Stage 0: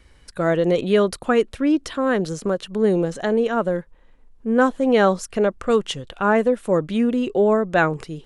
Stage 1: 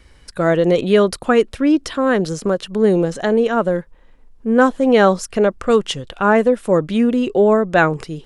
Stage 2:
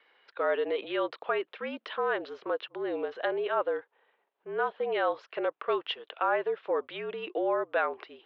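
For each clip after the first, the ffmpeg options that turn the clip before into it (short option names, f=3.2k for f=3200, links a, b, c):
-af "equalizer=f=5.1k:w=6.8:g=3,volume=4dB"
-af "alimiter=limit=-8.5dB:level=0:latency=1:release=82,highpass=f=530:t=q:w=0.5412,highpass=f=530:t=q:w=1.307,lowpass=f=3.6k:t=q:w=0.5176,lowpass=f=3.6k:t=q:w=0.7071,lowpass=f=3.6k:t=q:w=1.932,afreqshift=-51,volume=-7.5dB"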